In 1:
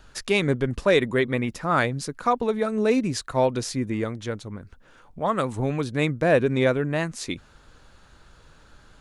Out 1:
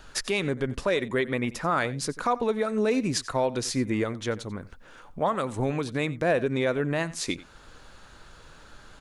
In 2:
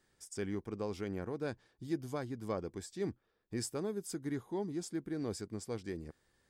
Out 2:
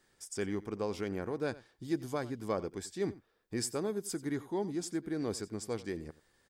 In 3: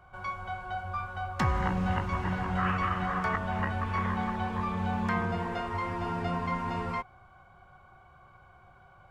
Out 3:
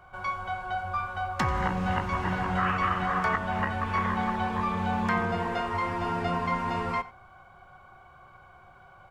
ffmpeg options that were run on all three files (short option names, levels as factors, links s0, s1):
-af "alimiter=limit=0.112:level=0:latency=1:release=332,equalizer=f=68:w=0.31:g=-5,aecho=1:1:90:0.119,volume=1.68"